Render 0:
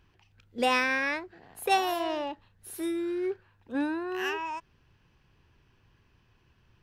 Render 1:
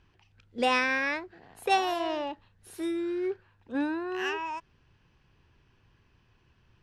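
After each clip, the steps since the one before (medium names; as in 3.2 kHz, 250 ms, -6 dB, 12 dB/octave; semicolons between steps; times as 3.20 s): low-pass 7.9 kHz 12 dB/octave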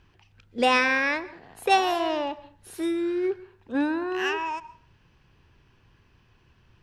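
reverberation RT60 0.45 s, pre-delay 116 ms, DRR 18 dB; trim +4.5 dB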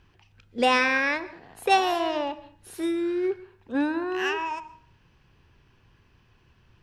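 de-hum 315.5 Hz, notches 34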